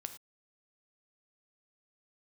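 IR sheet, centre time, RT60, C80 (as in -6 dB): 8 ms, not exponential, 14.0 dB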